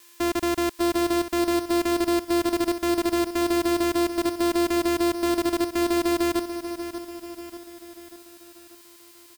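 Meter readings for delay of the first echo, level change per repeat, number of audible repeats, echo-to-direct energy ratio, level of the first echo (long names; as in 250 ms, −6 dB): 589 ms, −6.0 dB, 5, −9.0 dB, −10.5 dB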